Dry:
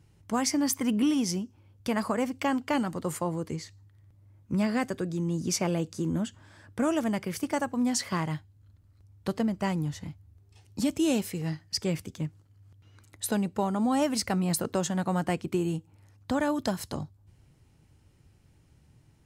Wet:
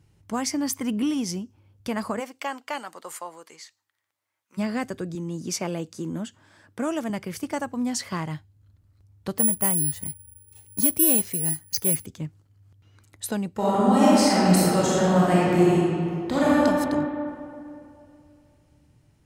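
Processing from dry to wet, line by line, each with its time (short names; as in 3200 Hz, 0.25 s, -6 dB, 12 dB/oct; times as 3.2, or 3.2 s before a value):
2.19–4.57 HPF 490 Hz -> 1400 Hz
5.15–7.1 Bessel high-pass 170 Hz
9.38–12.06 careless resampling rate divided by 4×, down filtered, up zero stuff
13.53–16.6 reverb throw, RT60 2.6 s, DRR -9 dB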